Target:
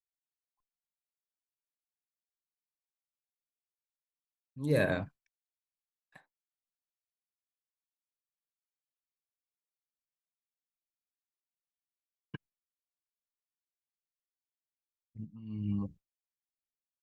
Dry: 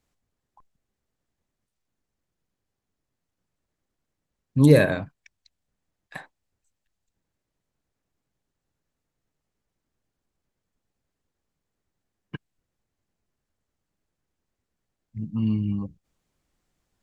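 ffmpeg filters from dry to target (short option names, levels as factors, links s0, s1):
-filter_complex "[0:a]agate=range=0.0224:threshold=0.00708:ratio=3:detection=peak,tremolo=f=1.2:d=0.9,asplit=3[s0][s1][s2];[s0]afade=t=out:st=12.35:d=0.02[s3];[s1]acompressor=threshold=0.00501:ratio=6,afade=t=in:st=12.35:d=0.02,afade=t=out:st=15.18:d=0.02[s4];[s2]afade=t=in:st=15.18:d=0.02[s5];[s3][s4][s5]amix=inputs=3:normalize=0,volume=0.596"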